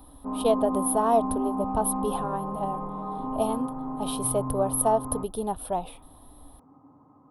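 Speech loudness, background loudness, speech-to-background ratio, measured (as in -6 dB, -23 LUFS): -28.0 LUFS, -32.0 LUFS, 4.0 dB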